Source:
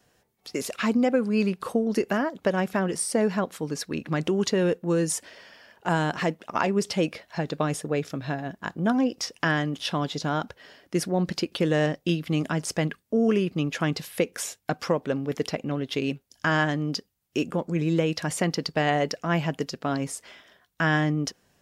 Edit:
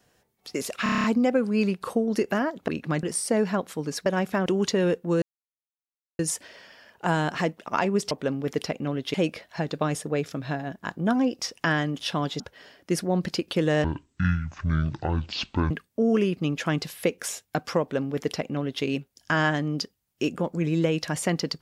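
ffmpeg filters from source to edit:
-filter_complex "[0:a]asplit=18[a][b][c][d][e][f][g][h][i][j][k][l][m][n][o][p][q][r];[a]atrim=end=0.862[s];[b]atrim=start=0.828:end=0.862[t];[c]atrim=start=0.828:end=0.862[u];[d]atrim=start=0.828:end=0.862[v];[e]atrim=start=0.828:end=0.862[w];[f]atrim=start=0.828:end=0.862[x];[g]atrim=start=0.828:end=0.862[y];[h]atrim=start=0.828:end=2.472[z];[i]atrim=start=3.898:end=4.252[aa];[j]atrim=start=2.868:end=3.902[ab];[k]atrim=start=2.468:end=2.872[ac];[l]atrim=start=4.248:end=5.01,asetpts=PTS-STARTPTS,afade=t=out:st=0.758:d=0.004:c=hsin,apad=pad_dur=0.97[ad];[m]atrim=start=5.01:end=6.932,asetpts=PTS-STARTPTS,afade=t=in:d=0.004:c=hsin[ae];[n]atrim=start=14.948:end=15.982[af];[o]atrim=start=6.928:end=10.192[ag];[p]atrim=start=10.438:end=11.884[ah];[q]atrim=start=11.88:end=12.85,asetpts=PTS-STARTPTS,asetrate=22932,aresample=44100,atrim=end_sample=82263,asetpts=PTS-STARTPTS[ai];[r]atrim=start=12.846[aj];[s][t]acrossfade=d=0.004:c1=hsin:c2=hsin[ak];[ak][u]acrossfade=d=0.004:c1=hsin:c2=hsin[al];[al][v]acrossfade=d=0.004:c1=hsin:c2=hsin[am];[am][w]acrossfade=d=0.004:c1=hsin:c2=hsin[an];[an][x]acrossfade=d=0.004:c1=hsin:c2=hsin[ao];[ao][y]acrossfade=d=0.004:c1=hsin:c2=hsin[ap];[ap][z]acrossfade=d=0.004:c1=hsin:c2=hsin[aq];[aq][aa]acrossfade=d=0.004:c1=hsin:c2=hsin[ar];[ar][ab]acrossfade=d=0.004:c1=hsin:c2=hsin[as];[as][ac]acrossfade=d=0.004:c1=hsin:c2=hsin[at];[ad][ae]concat=n=2:v=0:a=1[au];[at][au]acrossfade=d=0.004:c1=hsin:c2=hsin[av];[av][af]acrossfade=d=0.004:c1=hsin:c2=hsin[aw];[aw][ag]acrossfade=d=0.004:c1=hsin:c2=hsin[ax];[ax][ah]acrossfade=d=0.004:c1=hsin:c2=hsin[ay];[ay][ai]acrossfade=d=0.004:c1=hsin:c2=hsin[az];[az][aj]acrossfade=d=0.004:c1=hsin:c2=hsin"

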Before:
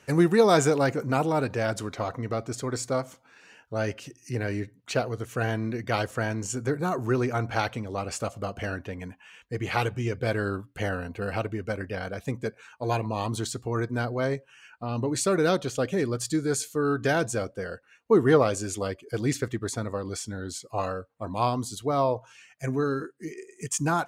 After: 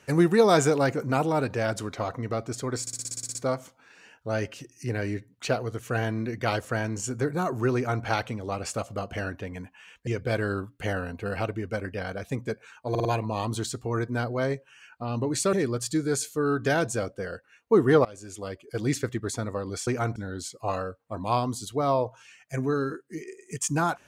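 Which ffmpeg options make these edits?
-filter_complex "[0:a]asplit=18[a][b][c][d][e][f][g][h][i][j][k][l][m][n][o][p][q][r];[a]atrim=end=2.872[s];[b]atrim=start=2.808:end=2.872[t];[c]atrim=start=2.808:end=2.872[u];[d]atrim=start=2.808:end=2.872[v];[e]atrim=start=2.808:end=2.872[w];[f]atrim=start=2.808:end=2.872[x];[g]atrim=start=2.808:end=2.872[y];[h]atrim=start=2.808:end=2.872[z];[i]atrim=start=2.808:end=2.872[aa];[j]atrim=start=2.808:end=9.532[ab];[k]atrim=start=10.028:end=12.912[ac];[l]atrim=start=12.858:end=12.912[ad];[m]atrim=start=12.858:end=12.912[ae];[n]atrim=start=12.858:end=15.342[af];[o]atrim=start=15.918:end=18.44,asetpts=PTS-STARTPTS,afade=t=out:st=2.518:d=0.004:c=hsin:silence=0.0749894[ag];[p]atrim=start=18.44:end=20.262,asetpts=PTS-STARTPTS,afade=t=in:d=0.83:silence=0.0749894[ah];[q]atrim=start=7.208:end=7.502[ai];[r]atrim=start=20.258[aj];[s][t]acrossfade=d=0.004:c1=hsin:c2=hsin[ak];[ak][u]acrossfade=d=0.004:c1=hsin:c2=hsin[al];[al][v]acrossfade=d=0.004:c1=hsin:c2=hsin[am];[am][w]acrossfade=d=0.004:c1=hsin:c2=hsin[an];[an][x]acrossfade=d=0.004:c1=hsin:c2=hsin[ao];[ao][y]acrossfade=d=0.004:c1=hsin:c2=hsin[ap];[ap][z]acrossfade=d=0.004:c1=hsin:c2=hsin[aq];[aq][aa]acrossfade=d=0.004:c1=hsin:c2=hsin[ar];[ar][ab]acrossfade=d=0.004:c1=hsin:c2=hsin[as];[as][ac]acrossfade=d=0.004:c1=hsin:c2=hsin[at];[at][ad]acrossfade=d=0.004:c1=hsin:c2=hsin[au];[au][ae]acrossfade=d=0.004:c1=hsin:c2=hsin[av];[av][af]acrossfade=d=0.004:c1=hsin:c2=hsin[aw];[ag][ah]concat=n=2:v=0:a=1[ax];[aw][ax]acrossfade=d=0.004:c1=hsin:c2=hsin[ay];[ay][ai]acrossfade=d=0.004:c1=hsin:c2=hsin[az];[az][aj]acrossfade=d=0.004:c1=hsin:c2=hsin"

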